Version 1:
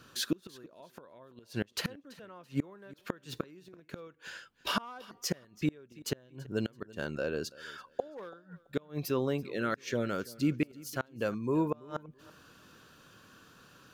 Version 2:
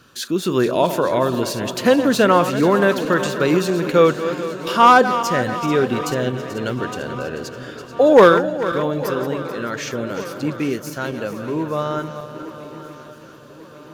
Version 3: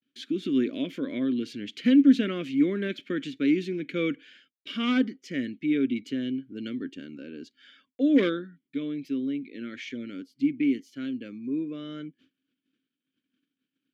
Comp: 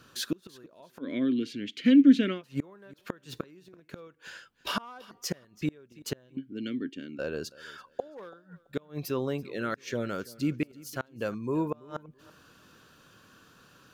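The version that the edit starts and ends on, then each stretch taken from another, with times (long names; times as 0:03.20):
1
0:01.04–0:02.37: punch in from 3, crossfade 0.10 s
0:06.37–0:07.19: punch in from 3
not used: 2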